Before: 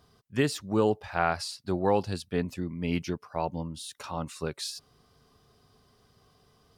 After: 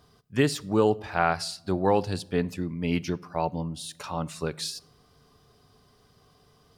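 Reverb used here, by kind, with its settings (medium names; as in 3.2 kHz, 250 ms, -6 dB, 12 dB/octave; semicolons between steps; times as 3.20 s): simulated room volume 2200 m³, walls furnished, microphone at 0.38 m; trim +2.5 dB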